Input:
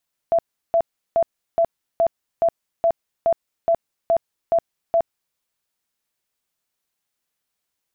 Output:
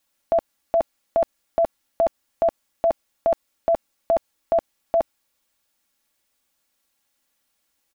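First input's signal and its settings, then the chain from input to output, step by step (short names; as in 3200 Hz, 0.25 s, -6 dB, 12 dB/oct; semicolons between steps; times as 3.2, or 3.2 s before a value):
tone bursts 670 Hz, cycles 45, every 0.42 s, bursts 12, -13.5 dBFS
comb 3.6 ms, depth 53%; in parallel at 0 dB: limiter -25 dBFS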